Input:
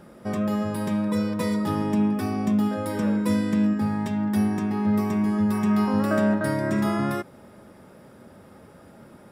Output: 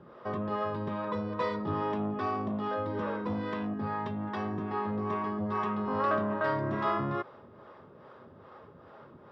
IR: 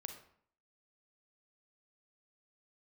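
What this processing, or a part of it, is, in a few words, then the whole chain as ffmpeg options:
guitar amplifier with harmonic tremolo: -filter_complex "[0:a]acrossover=split=400[s0][s1];[s0]aeval=exprs='val(0)*(1-0.7/2+0.7/2*cos(2*PI*2.4*n/s))':c=same[s2];[s1]aeval=exprs='val(0)*(1-0.7/2-0.7/2*cos(2*PI*2.4*n/s))':c=same[s3];[s2][s3]amix=inputs=2:normalize=0,asoftclip=type=tanh:threshold=0.0841,highpass=82,equalizer=f=200:t=q:w=4:g=-9,equalizer=f=290:t=q:w=4:g=-4,equalizer=f=430:t=q:w=4:g=4,equalizer=f=1100:t=q:w=4:g=10,equalizer=f=2300:t=q:w=4:g=-5,lowpass=f=3800:w=0.5412,lowpass=f=3800:w=1.3066"

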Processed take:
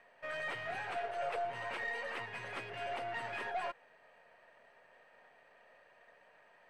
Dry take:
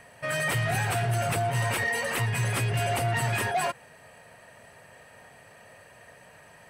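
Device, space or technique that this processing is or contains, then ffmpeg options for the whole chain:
crystal radio: -filter_complex "[0:a]asettb=1/sr,asplit=3[s0][s1][s2];[s0]atrim=end=0.964[s3];[s1]atrim=start=0.96:end=1.45,asetpts=PTS-STARTPTS,afade=t=in:d=0.004:c=qsin,afade=t=out:st=0.486:d=0.004:c=qsin,lowshelf=f=330:t=q:w=3:g=-12.5[s4];[s2]atrim=start=1.446[s5];[s3][s4]acrossfade=d=0.004:c1=hsin:c2=qsin[s6];[s6][s5]acrossfade=d=0.004:c1=qsin:c2=hsin,highpass=360,lowpass=3000,aeval=exprs='if(lt(val(0),0),0.708*val(0),val(0))':c=same,volume=0.355"

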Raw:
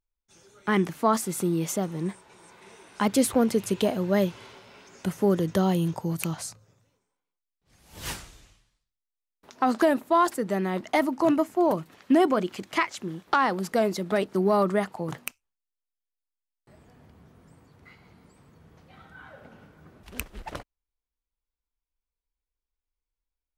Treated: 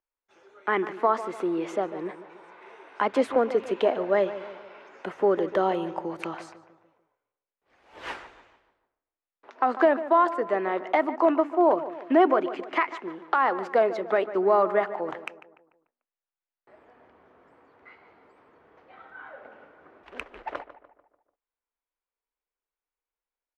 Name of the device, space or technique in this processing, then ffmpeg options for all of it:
DJ mixer with the lows and highs turned down: -filter_complex "[0:a]lowpass=6800,acrossover=split=400 2600:gain=0.2 1 0.0891[s0][s1][s2];[s0][s1][s2]amix=inputs=3:normalize=0,alimiter=limit=0.158:level=0:latency=1:release=248,lowshelf=f=220:t=q:w=1.5:g=-7.5,asplit=2[s3][s4];[s4]adelay=147,lowpass=f=2000:p=1,volume=0.224,asplit=2[s5][s6];[s6]adelay=147,lowpass=f=2000:p=1,volume=0.49,asplit=2[s7][s8];[s8]adelay=147,lowpass=f=2000:p=1,volume=0.49,asplit=2[s9][s10];[s10]adelay=147,lowpass=f=2000:p=1,volume=0.49,asplit=2[s11][s12];[s12]adelay=147,lowpass=f=2000:p=1,volume=0.49[s13];[s3][s5][s7][s9][s11][s13]amix=inputs=6:normalize=0,volume=1.68"

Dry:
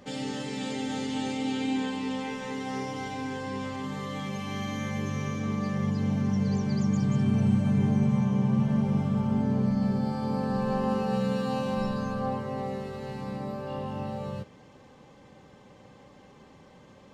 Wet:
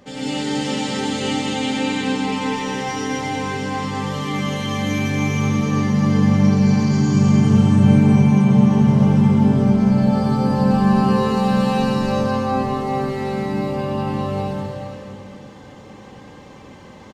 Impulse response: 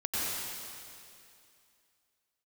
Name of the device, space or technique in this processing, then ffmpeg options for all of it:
cave: -filter_complex "[0:a]aecho=1:1:211:0.251[s0];[1:a]atrim=start_sample=2205[s1];[s0][s1]afir=irnorm=-1:irlink=0,volume=1.58"

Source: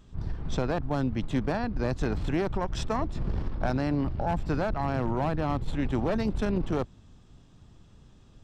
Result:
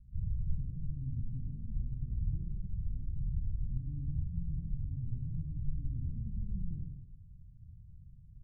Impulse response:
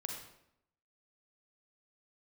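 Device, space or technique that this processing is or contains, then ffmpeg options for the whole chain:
club heard from the street: -filter_complex "[0:a]alimiter=level_in=1.06:limit=0.0631:level=0:latency=1:release=362,volume=0.944,lowpass=f=140:w=0.5412,lowpass=f=140:w=1.3066[s0];[1:a]atrim=start_sample=2205[s1];[s0][s1]afir=irnorm=-1:irlink=0,volume=1.41"

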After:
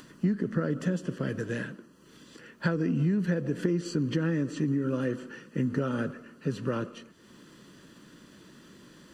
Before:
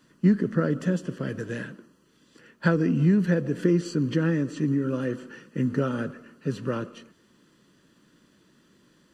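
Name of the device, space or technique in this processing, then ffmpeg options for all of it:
upward and downward compression: -af "acompressor=mode=upward:threshold=0.00708:ratio=2.5,acompressor=threshold=0.0631:ratio=4"

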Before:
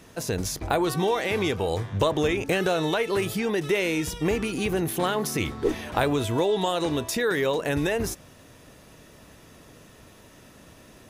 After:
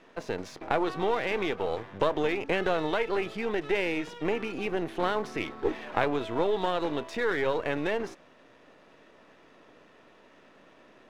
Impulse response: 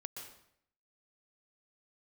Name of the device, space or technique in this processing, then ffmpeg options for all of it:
crystal radio: -af "highpass=300,lowpass=2700,aeval=exprs='if(lt(val(0),0),0.447*val(0),val(0))':c=same"

